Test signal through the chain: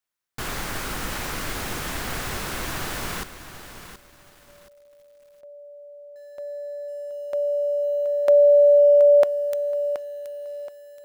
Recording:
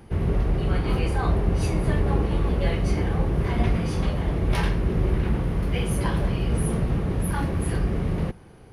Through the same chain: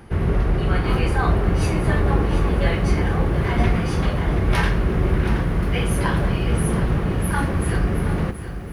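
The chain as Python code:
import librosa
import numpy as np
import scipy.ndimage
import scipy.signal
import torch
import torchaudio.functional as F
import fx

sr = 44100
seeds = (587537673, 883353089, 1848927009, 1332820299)

y = fx.peak_eq(x, sr, hz=1500.0, db=5.5, octaves=1.1)
y = fx.comb_fb(y, sr, f0_hz=360.0, decay_s=0.23, harmonics='all', damping=0.0, mix_pct=30)
y = fx.echo_crushed(y, sr, ms=725, feedback_pct=35, bits=9, wet_db=-11)
y = y * 10.0 ** (6.0 / 20.0)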